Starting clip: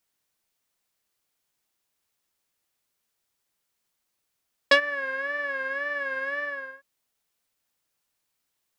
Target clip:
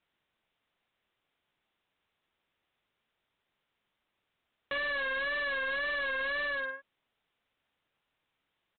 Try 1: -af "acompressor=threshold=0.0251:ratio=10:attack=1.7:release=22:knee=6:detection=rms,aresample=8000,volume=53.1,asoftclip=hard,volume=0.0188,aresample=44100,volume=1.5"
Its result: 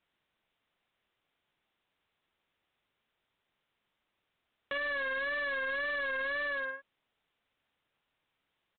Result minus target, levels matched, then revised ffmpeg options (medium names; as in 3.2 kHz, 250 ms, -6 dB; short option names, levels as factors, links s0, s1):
compression: peak gain reduction +5.5 dB
-af "acompressor=threshold=0.0501:ratio=10:attack=1.7:release=22:knee=6:detection=rms,aresample=8000,volume=53.1,asoftclip=hard,volume=0.0188,aresample=44100,volume=1.5"